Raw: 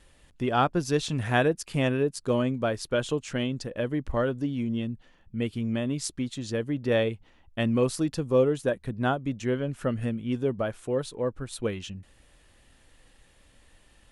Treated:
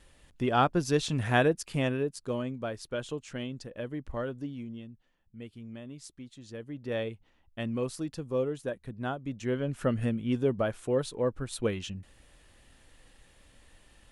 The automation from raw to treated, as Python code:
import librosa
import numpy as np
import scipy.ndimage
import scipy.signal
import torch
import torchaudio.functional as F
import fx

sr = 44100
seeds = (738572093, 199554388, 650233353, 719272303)

y = fx.gain(x, sr, db=fx.line((1.51, -1.0), (2.42, -8.0), (4.46, -8.0), (4.9, -15.0), (6.32, -15.0), (7.01, -8.0), (9.12, -8.0), (9.78, 0.0)))